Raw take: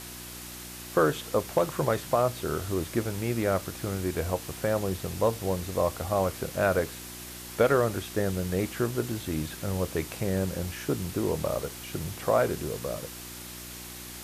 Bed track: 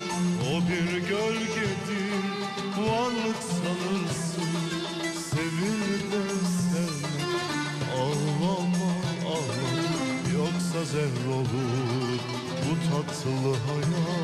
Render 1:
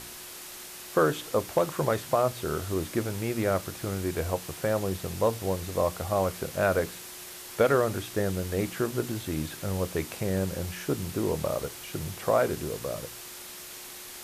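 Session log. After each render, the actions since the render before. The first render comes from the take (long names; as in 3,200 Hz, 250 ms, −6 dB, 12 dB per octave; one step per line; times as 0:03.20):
hum removal 60 Hz, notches 5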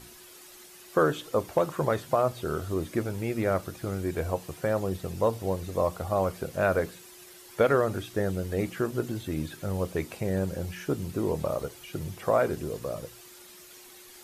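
broadband denoise 10 dB, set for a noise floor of −43 dBFS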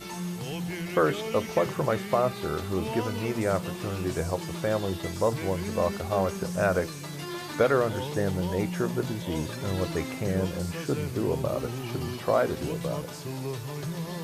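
mix in bed track −7.5 dB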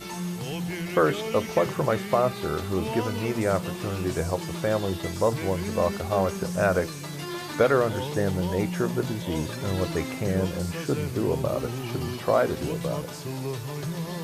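level +2 dB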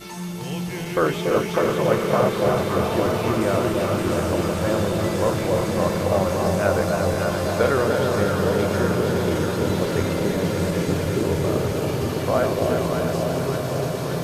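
feedback delay that plays each chunk backwards 170 ms, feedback 83%, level −6 dB
delay that swaps between a low-pass and a high-pass 285 ms, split 900 Hz, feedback 86%, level −4 dB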